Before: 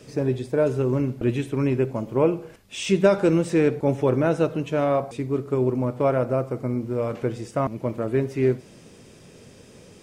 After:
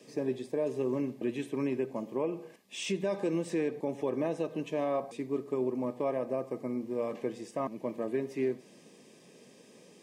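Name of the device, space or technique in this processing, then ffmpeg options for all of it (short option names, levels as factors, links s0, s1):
PA system with an anti-feedback notch: -af "highpass=f=180:w=0.5412,highpass=f=180:w=1.3066,asuperstop=centerf=1400:order=20:qfactor=5.4,alimiter=limit=0.178:level=0:latency=1:release=155,volume=0.447"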